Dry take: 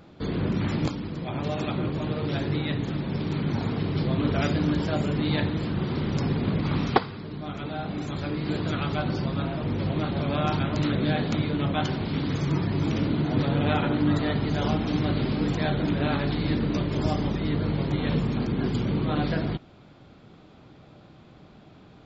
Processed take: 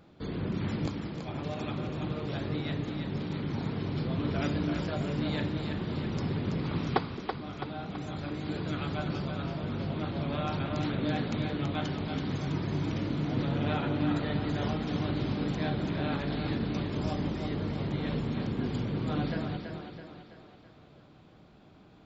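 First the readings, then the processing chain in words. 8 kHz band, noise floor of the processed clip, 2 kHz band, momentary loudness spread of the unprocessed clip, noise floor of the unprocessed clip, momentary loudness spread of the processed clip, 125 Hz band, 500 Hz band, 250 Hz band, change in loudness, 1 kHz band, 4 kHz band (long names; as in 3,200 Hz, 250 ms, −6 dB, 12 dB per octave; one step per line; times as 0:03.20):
can't be measured, −56 dBFS, −5.5 dB, 5 LU, −51 dBFS, 6 LU, −6.0 dB, −6.0 dB, −6.0 dB, −6.0 dB, −6.0 dB, −6.0 dB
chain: echo with a time of its own for lows and highs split 340 Hz, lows 218 ms, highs 330 ms, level −6 dB
level −7 dB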